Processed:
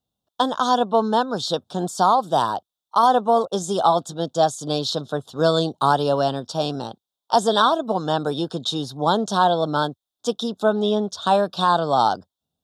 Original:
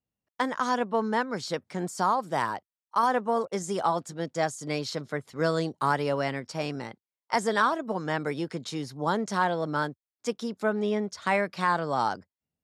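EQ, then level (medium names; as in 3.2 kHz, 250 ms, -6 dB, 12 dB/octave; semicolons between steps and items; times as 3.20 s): Butterworth band-stop 2.1 kHz, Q 1.3; peaking EQ 720 Hz +6 dB 0.45 oct; peaking EQ 3.6 kHz +14.5 dB 0.28 oct; +6.0 dB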